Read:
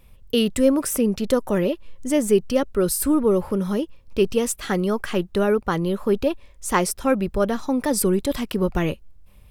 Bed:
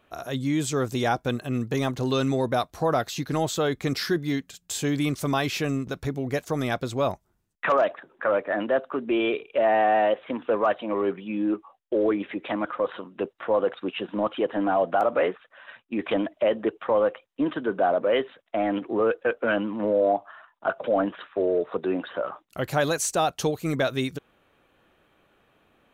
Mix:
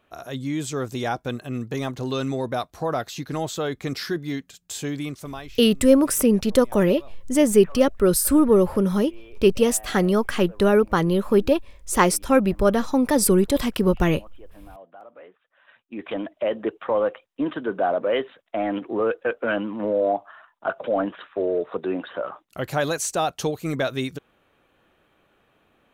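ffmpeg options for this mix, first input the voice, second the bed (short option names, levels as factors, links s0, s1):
-filter_complex "[0:a]adelay=5250,volume=1.33[s0];[1:a]volume=11.2,afade=t=out:st=4.78:d=0.82:silence=0.0891251,afade=t=in:st=15.3:d=1.45:silence=0.0707946[s1];[s0][s1]amix=inputs=2:normalize=0"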